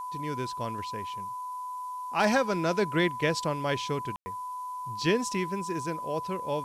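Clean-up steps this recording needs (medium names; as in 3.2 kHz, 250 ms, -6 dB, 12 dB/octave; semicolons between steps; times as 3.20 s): clip repair -15.5 dBFS; band-stop 1 kHz, Q 30; room tone fill 4.16–4.26 s; noise print and reduce 30 dB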